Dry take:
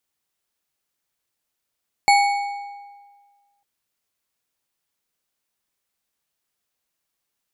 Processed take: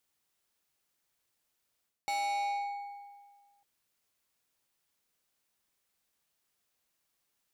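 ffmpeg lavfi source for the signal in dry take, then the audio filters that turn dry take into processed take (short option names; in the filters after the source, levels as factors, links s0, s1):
-f lavfi -i "aevalsrc='0.282*pow(10,-3*t/1.61)*sin(2*PI*809*t)+0.158*pow(10,-3*t/1.188)*sin(2*PI*2230.4*t)+0.0891*pow(10,-3*t/0.971)*sin(2*PI*4371.8*t)+0.0501*pow(10,-3*t/0.835)*sin(2*PI*7226.8*t)+0.0282*pow(10,-3*t/0.74)*sin(2*PI*10792.1*t)':d=1.55:s=44100"
-af "areverse,acompressor=threshold=0.0501:ratio=12,areverse,asoftclip=type=tanh:threshold=0.0335"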